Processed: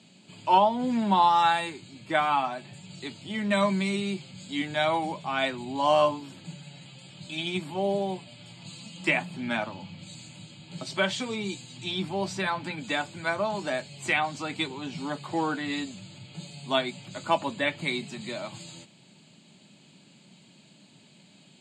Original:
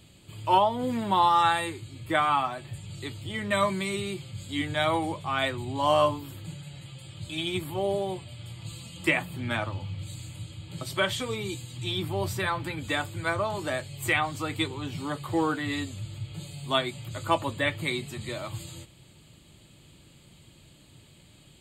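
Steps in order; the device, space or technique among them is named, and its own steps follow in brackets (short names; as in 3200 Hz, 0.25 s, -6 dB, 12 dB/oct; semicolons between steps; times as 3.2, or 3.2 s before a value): television speaker (speaker cabinet 180–7000 Hz, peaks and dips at 200 Hz +5 dB, 330 Hz -7 dB, 490 Hz -7 dB, 1200 Hz -8 dB, 1900 Hz -5 dB, 3300 Hz -5 dB); gain +3.5 dB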